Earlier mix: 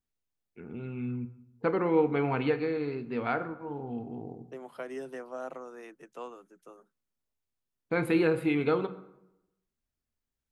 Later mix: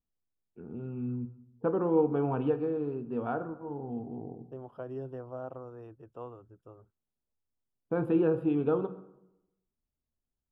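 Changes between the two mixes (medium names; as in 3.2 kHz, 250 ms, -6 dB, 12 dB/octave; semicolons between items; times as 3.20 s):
second voice: remove steep high-pass 150 Hz 96 dB/octave; master: add boxcar filter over 21 samples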